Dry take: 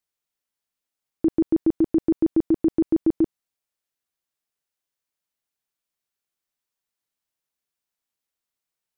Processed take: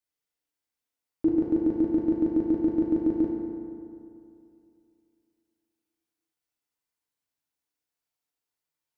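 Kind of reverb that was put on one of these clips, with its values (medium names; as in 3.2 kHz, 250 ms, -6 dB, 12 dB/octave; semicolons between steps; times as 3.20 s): FDN reverb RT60 2.6 s, high-frequency decay 0.5×, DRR -3.5 dB; trim -6.5 dB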